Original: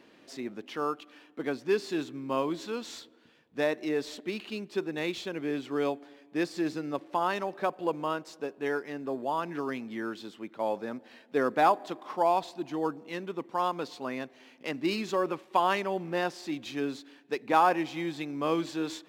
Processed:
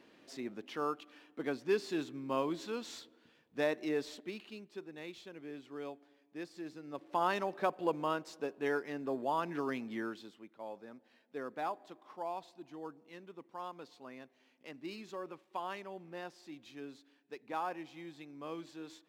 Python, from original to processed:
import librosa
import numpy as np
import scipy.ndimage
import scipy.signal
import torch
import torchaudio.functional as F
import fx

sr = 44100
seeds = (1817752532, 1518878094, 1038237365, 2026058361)

y = fx.gain(x, sr, db=fx.line((3.96, -4.5), (4.78, -14.5), (6.8, -14.5), (7.21, -3.0), (9.98, -3.0), (10.54, -15.0)))